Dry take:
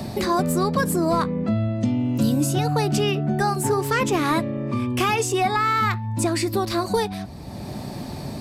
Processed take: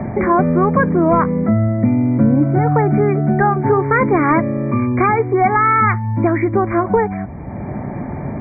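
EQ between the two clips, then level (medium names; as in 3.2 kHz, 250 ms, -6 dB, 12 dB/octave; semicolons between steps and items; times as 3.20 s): brick-wall FIR low-pass 2.4 kHz; +7.5 dB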